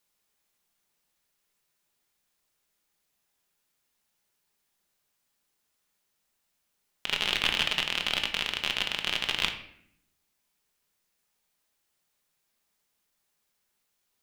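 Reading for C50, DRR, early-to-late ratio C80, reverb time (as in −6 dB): 10.0 dB, 4.5 dB, 12.5 dB, 0.65 s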